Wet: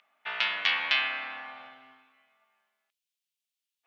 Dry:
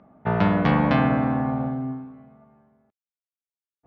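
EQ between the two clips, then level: resonant high-pass 2900 Hz, resonance Q 2; +6.0 dB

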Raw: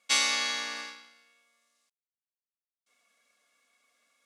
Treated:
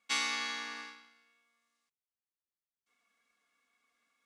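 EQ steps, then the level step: bell 580 Hz -13 dB 0.37 oct; high shelf 3000 Hz -10 dB; -2.0 dB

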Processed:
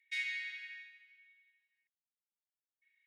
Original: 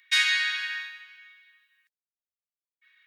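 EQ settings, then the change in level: band-pass 2100 Hz, Q 7.3; differentiator; tilt +2.5 dB/oct; -1.5 dB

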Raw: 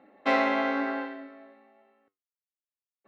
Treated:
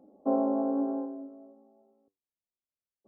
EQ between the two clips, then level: Gaussian blur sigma 13 samples; +3.5 dB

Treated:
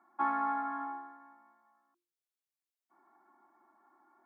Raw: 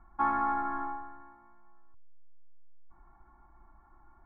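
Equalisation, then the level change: steep high-pass 250 Hz 36 dB/oct; bell 1100 Hz -3.5 dB 1.5 oct; notches 50/100/150/200/250/300/350 Hz; 0.0 dB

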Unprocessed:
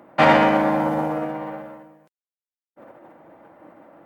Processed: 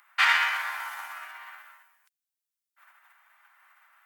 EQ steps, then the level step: inverse Chebyshev high-pass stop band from 510 Hz, stop band 50 dB; high shelf 5700 Hz +8.5 dB; 0.0 dB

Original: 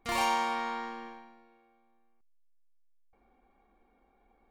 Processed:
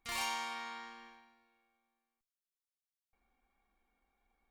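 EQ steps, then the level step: passive tone stack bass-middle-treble 5-5-5; +4.0 dB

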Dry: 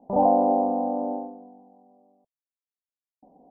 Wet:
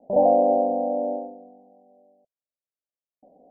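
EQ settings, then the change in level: ladder low-pass 680 Hz, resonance 60%; +6.5 dB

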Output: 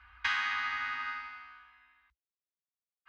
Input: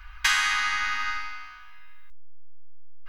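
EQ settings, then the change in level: HPF 66 Hz 24 dB/oct; air absorption 260 m; -5.5 dB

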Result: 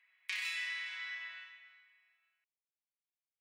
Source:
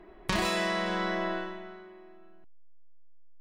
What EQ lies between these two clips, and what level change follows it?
ladder high-pass 2000 Hz, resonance 65%; 0.0 dB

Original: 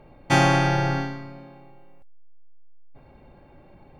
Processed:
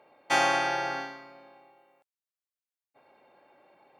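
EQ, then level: HPF 540 Hz 12 dB/oct; -3.0 dB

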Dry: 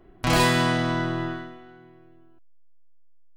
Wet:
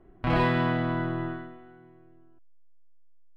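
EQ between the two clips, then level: air absorption 450 m; -2.0 dB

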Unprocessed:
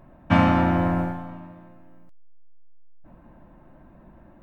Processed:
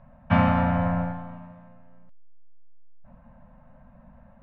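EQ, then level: elliptic band-stop 250–520 Hz; air absorption 280 m; 0.0 dB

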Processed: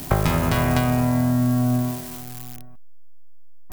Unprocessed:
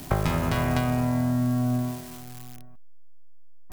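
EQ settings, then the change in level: high shelf 10000 Hz +6 dB; +4.5 dB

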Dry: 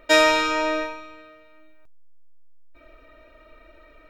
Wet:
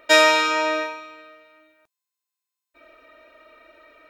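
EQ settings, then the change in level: HPF 500 Hz 6 dB/oct; +3.0 dB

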